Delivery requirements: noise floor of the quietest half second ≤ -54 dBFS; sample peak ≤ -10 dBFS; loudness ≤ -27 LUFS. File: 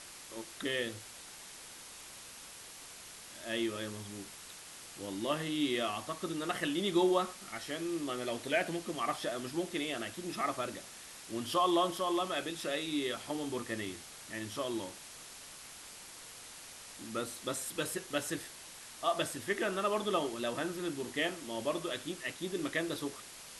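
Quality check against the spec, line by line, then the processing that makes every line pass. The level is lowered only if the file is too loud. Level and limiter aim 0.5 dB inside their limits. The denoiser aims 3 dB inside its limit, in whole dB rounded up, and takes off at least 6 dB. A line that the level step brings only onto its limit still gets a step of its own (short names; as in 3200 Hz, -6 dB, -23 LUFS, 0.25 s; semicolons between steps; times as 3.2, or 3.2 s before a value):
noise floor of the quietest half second -50 dBFS: fail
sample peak -17.5 dBFS: OK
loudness -35.5 LUFS: OK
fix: denoiser 7 dB, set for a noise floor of -50 dBFS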